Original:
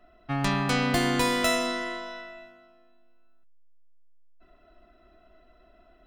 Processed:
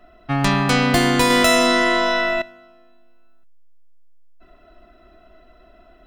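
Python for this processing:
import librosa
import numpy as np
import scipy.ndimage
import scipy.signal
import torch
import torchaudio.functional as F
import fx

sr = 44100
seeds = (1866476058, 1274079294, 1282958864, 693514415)

y = fx.env_flatten(x, sr, amount_pct=70, at=(1.3, 2.42))
y = F.gain(torch.from_numpy(y), 8.0).numpy()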